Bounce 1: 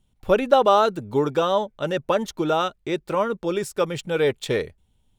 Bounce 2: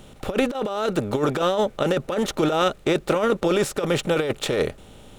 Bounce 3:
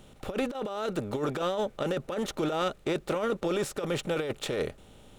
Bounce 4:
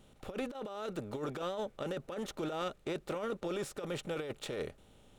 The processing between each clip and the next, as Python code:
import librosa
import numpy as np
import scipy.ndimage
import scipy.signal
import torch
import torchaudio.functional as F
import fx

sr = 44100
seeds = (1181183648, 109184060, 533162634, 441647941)

y1 = fx.bin_compress(x, sr, power=0.6)
y1 = fx.peak_eq(y1, sr, hz=960.0, db=-5.0, octaves=0.64)
y1 = fx.over_compress(y1, sr, threshold_db=-20.0, ratio=-0.5)
y2 = 10.0 ** (-10.5 / 20.0) * np.tanh(y1 / 10.0 ** (-10.5 / 20.0))
y2 = y2 * librosa.db_to_amplitude(-7.5)
y3 = fx.wow_flutter(y2, sr, seeds[0], rate_hz=2.1, depth_cents=23.0)
y3 = y3 * librosa.db_to_amplitude(-8.0)